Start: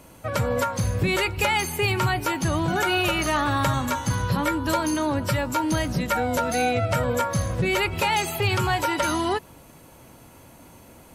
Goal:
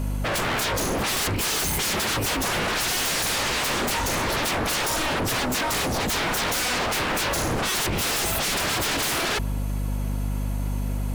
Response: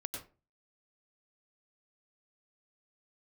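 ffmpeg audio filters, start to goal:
-af "aeval=exprs='val(0)+0.02*(sin(2*PI*50*n/s)+sin(2*PI*2*50*n/s)/2+sin(2*PI*3*50*n/s)/3+sin(2*PI*4*50*n/s)/4+sin(2*PI*5*50*n/s)/5)':channel_layout=same,acontrast=57,aeval=exprs='0.0708*(abs(mod(val(0)/0.0708+3,4)-2)-1)':channel_layout=same,volume=3dB"

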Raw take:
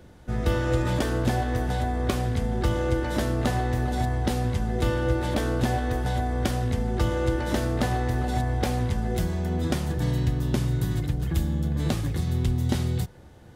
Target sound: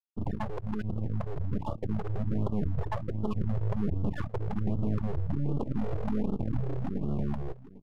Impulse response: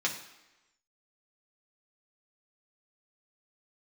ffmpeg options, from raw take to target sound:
-filter_complex "[0:a]asuperstop=centerf=2600:order=12:qfactor=0.81,afftfilt=real='re*gte(hypot(re,im),0.398)':imag='im*gte(hypot(re,im),0.398)':win_size=1024:overlap=0.75,aresample=16000,aeval=exprs='clip(val(0),-1,0.0473)':channel_layout=same,aresample=44100,acrossover=split=160[link_01][link_02];[link_02]acompressor=threshold=-58dB:ratio=1.5[link_03];[link_01][link_03]amix=inputs=2:normalize=0,highshelf=frequency=4000:gain=-11.5,dynaudnorm=framelen=590:gausssize=11:maxgain=3.5dB,lowshelf=frequency=200:gain=-10,aeval=exprs='max(val(0),0)':channel_layout=same,asetrate=76440,aresample=44100,aecho=1:1:800:0.133,asplit=2[link_04][link_05];[link_05]alimiter=level_in=8dB:limit=-24dB:level=0:latency=1:release=151,volume=-8dB,volume=2.5dB[link_06];[link_04][link_06]amix=inputs=2:normalize=0,afftfilt=real='re*(1-between(b*sr/1024,210*pow(2000/210,0.5+0.5*sin(2*PI*1.3*pts/sr))/1.41,210*pow(2000/210,0.5+0.5*sin(2*PI*1.3*pts/sr))*1.41))':imag='im*(1-between(b*sr/1024,210*pow(2000/210,0.5+0.5*sin(2*PI*1.3*pts/sr))/1.41,210*pow(2000/210,0.5+0.5*sin(2*PI*1.3*pts/sr))*1.41))':win_size=1024:overlap=0.75,volume=4.5dB"

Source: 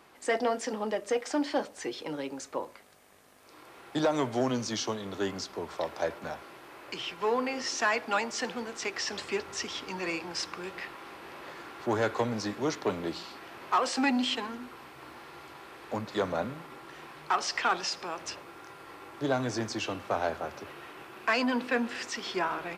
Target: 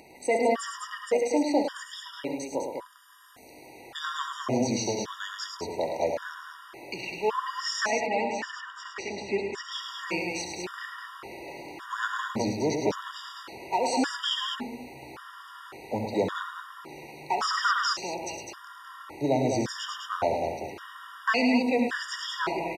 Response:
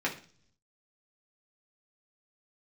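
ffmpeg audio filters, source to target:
-filter_complex "[0:a]acompressor=mode=upward:threshold=-49dB:ratio=2.5,asettb=1/sr,asplit=3[link_01][link_02][link_03];[link_01]atrim=end=7.864[link_04];[link_02]atrim=start=7.86:end=9.72,asetpts=PTS-STARTPTS,afade=type=in:duration=0.004:curve=qsin,afade=type=out:start_time=1.856:duration=0.004:curve=qsin,aemphasis=mode=reproduction:type=75kf[link_05];[link_03]atrim=start=9.716[link_06];[link_04][link_05]acrossfade=duration=0.004:curve1=hsin:curve2=qsin[link_07];[link_07][link_06]acrossfade=duration=0.004:curve1=qsin:curve2=hsin,asplit=2[link_08][link_09];[link_09]aecho=0:1:67|107|203:0.316|0.501|0.531[link_10];[link_08][link_10]amix=inputs=2:normalize=0,afftfilt=real='re*gt(sin(2*PI*0.89*pts/sr)*(1-2*mod(floor(b*sr/1024/950),2)),0)':imag='im*gt(sin(2*PI*0.89*pts/sr)*(1-2*mod(floor(b*sr/1024/950),2)),0)':win_size=1024:overlap=0.75,volume=3.5dB"

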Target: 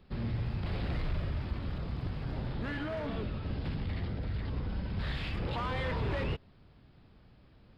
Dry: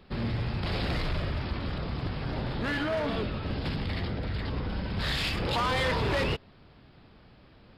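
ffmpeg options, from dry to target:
ffmpeg -i in.wav -filter_complex "[0:a]acrossover=split=3700[link_01][link_02];[link_02]acompressor=threshold=-52dB:ratio=4:attack=1:release=60[link_03];[link_01][link_03]amix=inputs=2:normalize=0,lowshelf=frequency=210:gain=7.5,asettb=1/sr,asplit=3[link_04][link_05][link_06];[link_04]atrim=end=0.444[link_07];[link_05]atrim=start=0.44:end=2.47,asetpts=PTS-STARTPTS,afade=type=in:duration=0.004:curve=qsin,afade=type=out:start_time=2.026:duration=0.004:curve=qsin,aeval=exprs='sgn(val(0))*max(abs(val(0))-0.00112,0)':channel_layout=same[link_08];[link_06]atrim=start=2.466[link_09];[link_07][link_08]acrossfade=duration=0.004:curve1=hsin:curve2=qsin[link_10];[link_10][link_09]acrossfade=duration=0.004:curve1=qsin:curve2=hsin,volume=-8.5dB" out.wav

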